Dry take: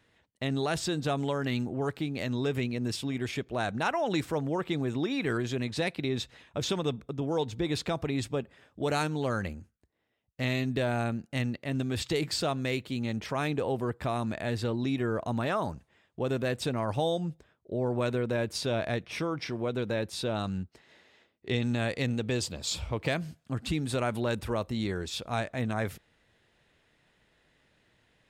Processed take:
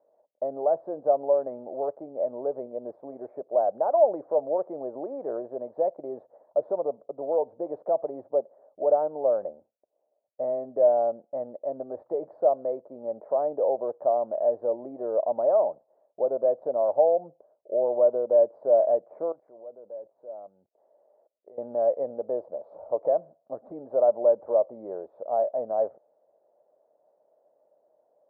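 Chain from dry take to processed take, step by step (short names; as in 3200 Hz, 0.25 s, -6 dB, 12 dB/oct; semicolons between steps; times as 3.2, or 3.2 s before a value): inverse Chebyshev low-pass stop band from 2700 Hz, stop band 60 dB; 19.32–21.58 level quantiser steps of 24 dB; resonant high-pass 590 Hz, resonance Q 5.9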